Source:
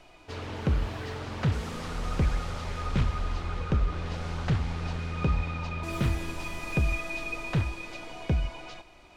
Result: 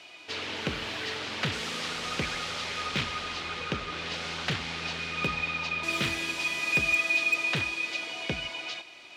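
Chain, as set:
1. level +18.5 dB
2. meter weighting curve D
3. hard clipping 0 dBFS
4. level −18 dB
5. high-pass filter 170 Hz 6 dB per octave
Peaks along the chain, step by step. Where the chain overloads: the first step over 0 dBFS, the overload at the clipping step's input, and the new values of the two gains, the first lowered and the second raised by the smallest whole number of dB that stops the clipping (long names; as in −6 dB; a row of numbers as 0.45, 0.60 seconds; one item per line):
+2.0, +6.0, 0.0, −18.0, −16.5 dBFS
step 1, 6.0 dB
step 1 +12.5 dB, step 4 −12 dB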